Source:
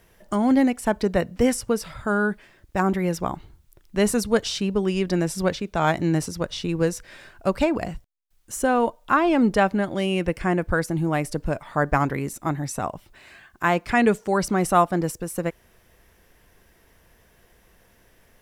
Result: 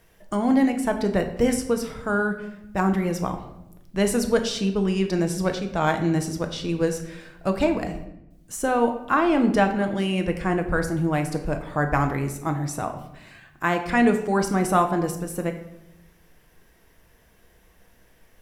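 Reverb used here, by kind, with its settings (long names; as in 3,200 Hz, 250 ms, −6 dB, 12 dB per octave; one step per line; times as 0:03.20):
rectangular room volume 290 cubic metres, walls mixed, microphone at 0.59 metres
level −2 dB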